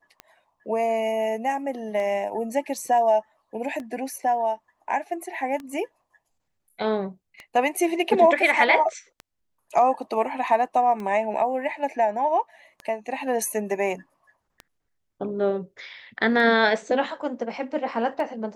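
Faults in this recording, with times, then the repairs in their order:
tick 33 1/3 rpm -22 dBFS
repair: de-click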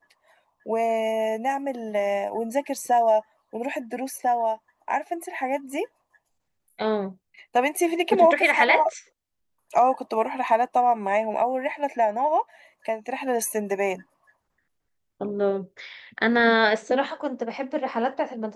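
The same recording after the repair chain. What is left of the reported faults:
nothing left

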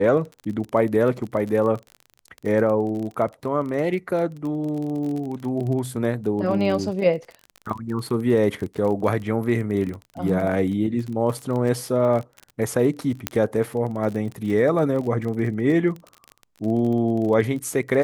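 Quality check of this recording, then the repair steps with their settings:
crackle 29 per s -29 dBFS
13.27 s: pop -5 dBFS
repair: de-click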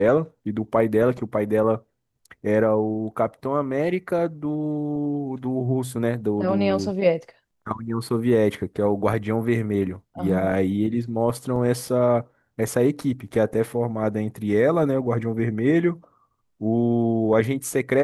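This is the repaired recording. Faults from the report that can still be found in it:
13.27 s: pop

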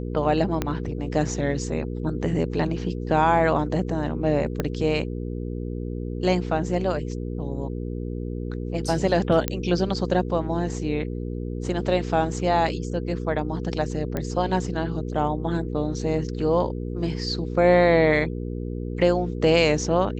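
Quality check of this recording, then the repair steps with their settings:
hum 60 Hz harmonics 8 -30 dBFS
0.62 s: pop -10 dBFS
4.60 s: pop -11 dBFS
9.48 s: pop -8 dBFS
14.17 s: pop -14 dBFS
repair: de-click; de-hum 60 Hz, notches 8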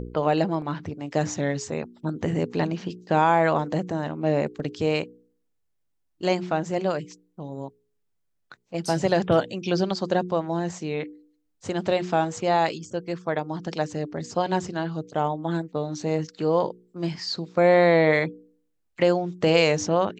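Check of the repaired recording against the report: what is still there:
0.62 s: pop
4.60 s: pop

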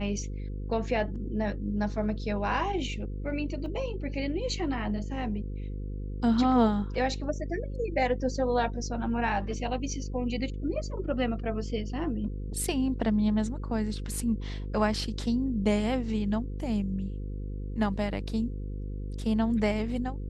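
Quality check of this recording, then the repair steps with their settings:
buzz 50 Hz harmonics 10 -35 dBFS
3.66 s: dropout 2.6 ms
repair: de-hum 50 Hz, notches 10; interpolate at 3.66 s, 2.6 ms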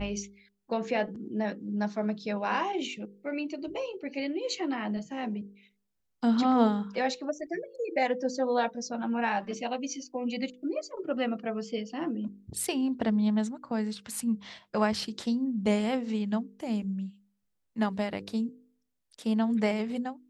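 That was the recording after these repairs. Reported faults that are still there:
nothing left

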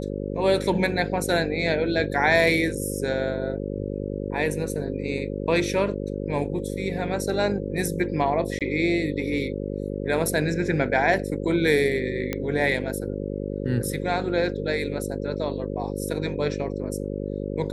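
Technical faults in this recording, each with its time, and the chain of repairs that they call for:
buzz 50 Hz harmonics 11 -30 dBFS
8.59–8.61 s: dropout 17 ms
12.33 s: pop -12 dBFS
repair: de-click; de-hum 50 Hz, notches 11; interpolate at 8.59 s, 17 ms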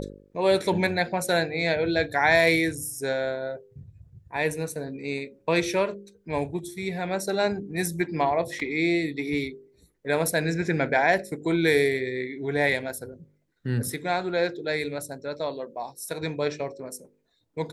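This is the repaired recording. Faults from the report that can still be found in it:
nothing left

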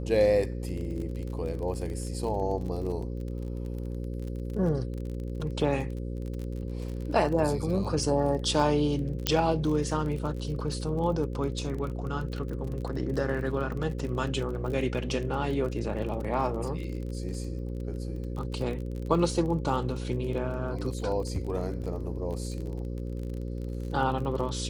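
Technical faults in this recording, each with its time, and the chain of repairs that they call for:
buzz 60 Hz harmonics 9 -34 dBFS
crackle 31 per s -35 dBFS
9.27 s: pop -7 dBFS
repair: de-click; de-hum 60 Hz, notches 9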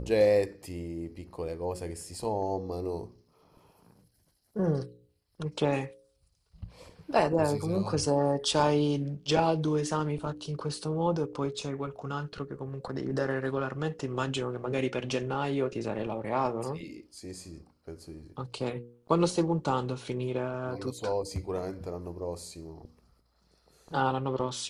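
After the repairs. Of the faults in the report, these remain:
nothing left

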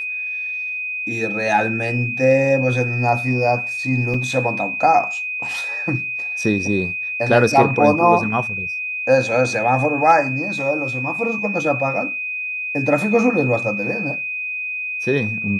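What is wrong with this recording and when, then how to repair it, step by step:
whine 2.5 kHz -23 dBFS
4.14 s: dropout 3.4 ms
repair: band-stop 2.5 kHz, Q 30; interpolate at 4.14 s, 3.4 ms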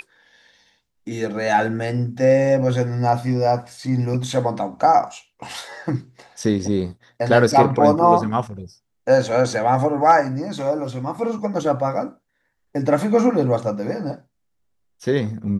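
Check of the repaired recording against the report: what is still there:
nothing left

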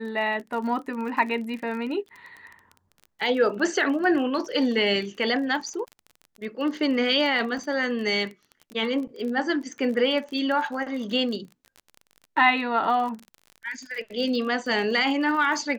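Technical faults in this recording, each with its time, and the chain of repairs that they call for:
crackle 31 per s -33 dBFS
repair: de-click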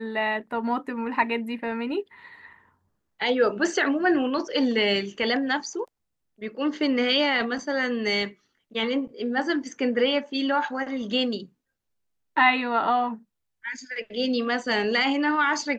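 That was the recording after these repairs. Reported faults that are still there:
nothing left

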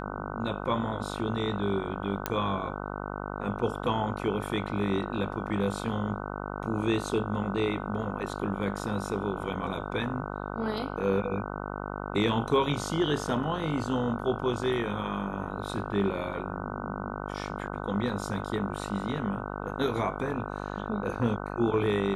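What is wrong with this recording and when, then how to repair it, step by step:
buzz 50 Hz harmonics 30 -36 dBFS
2.26 s: pop -11 dBFS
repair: de-click; de-hum 50 Hz, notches 30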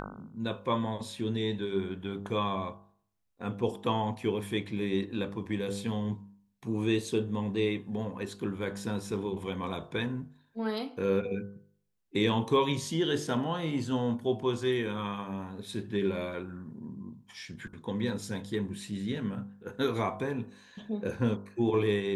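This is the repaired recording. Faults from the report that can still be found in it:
nothing left

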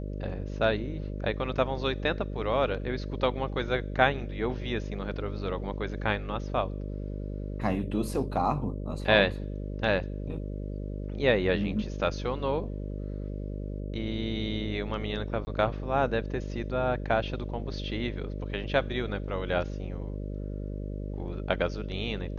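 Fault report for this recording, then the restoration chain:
buzz 50 Hz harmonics 12 -35 dBFS
15.45–15.47 s: dropout 20 ms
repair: de-hum 50 Hz, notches 12; interpolate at 15.45 s, 20 ms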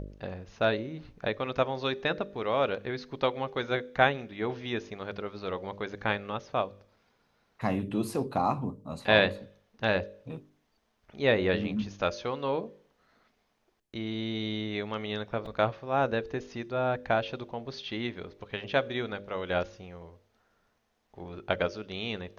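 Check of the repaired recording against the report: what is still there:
nothing left

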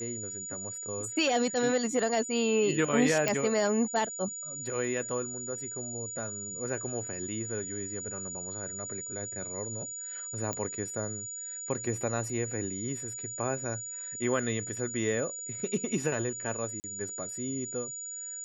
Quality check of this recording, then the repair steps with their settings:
whine 6.9 kHz -37 dBFS
3.28 s: pop -12 dBFS
10.53 s: pop -19 dBFS
16.80–16.84 s: dropout 39 ms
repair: de-click; band-stop 6.9 kHz, Q 30; interpolate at 16.80 s, 39 ms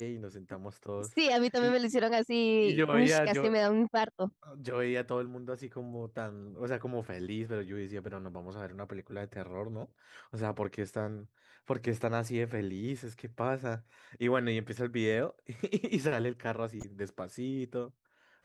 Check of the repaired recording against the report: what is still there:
nothing left

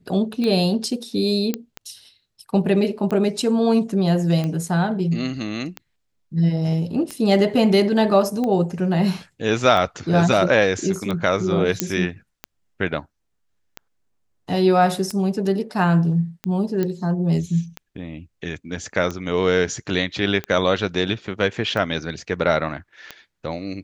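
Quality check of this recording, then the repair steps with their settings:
tick 45 rpm -14 dBFS
1.54 s: pop -9 dBFS
11.80 s: pop -1 dBFS
16.83 s: pop -12 dBFS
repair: de-click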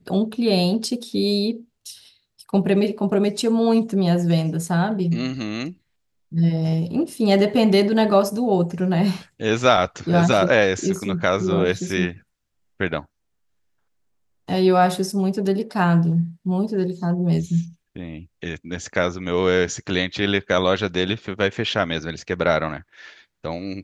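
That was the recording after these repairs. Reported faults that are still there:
nothing left

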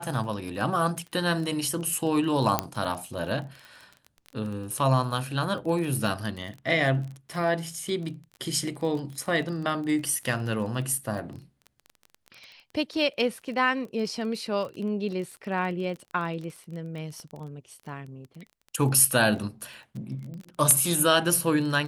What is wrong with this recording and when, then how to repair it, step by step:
crackle 21 per s -34 dBFS
2.59 s: pop -7 dBFS
17.20 s: pop -31 dBFS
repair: de-click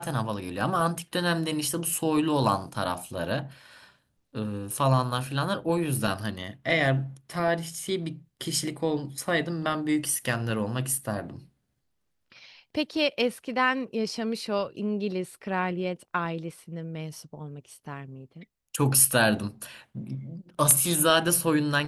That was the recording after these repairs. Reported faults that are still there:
17.20 s: pop

